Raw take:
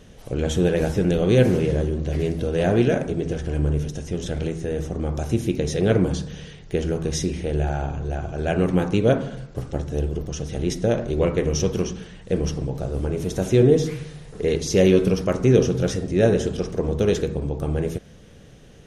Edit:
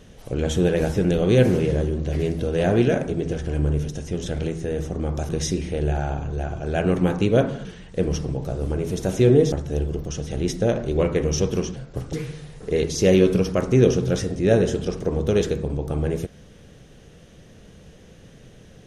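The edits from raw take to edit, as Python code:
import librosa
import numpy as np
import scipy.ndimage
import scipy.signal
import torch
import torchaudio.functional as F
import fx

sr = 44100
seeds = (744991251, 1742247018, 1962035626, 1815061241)

y = fx.edit(x, sr, fx.cut(start_s=5.29, length_s=1.72),
    fx.swap(start_s=9.37, length_s=0.37, other_s=11.98, other_length_s=1.87), tone=tone)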